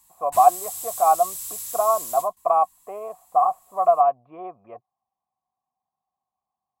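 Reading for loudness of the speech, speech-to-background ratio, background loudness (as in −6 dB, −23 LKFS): −21.0 LKFS, 10.5 dB, −31.5 LKFS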